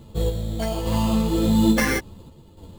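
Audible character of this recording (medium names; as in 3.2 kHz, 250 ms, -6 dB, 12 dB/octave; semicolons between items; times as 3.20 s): random-step tremolo; aliases and images of a low sample rate 3.8 kHz, jitter 0%; a shimmering, thickened sound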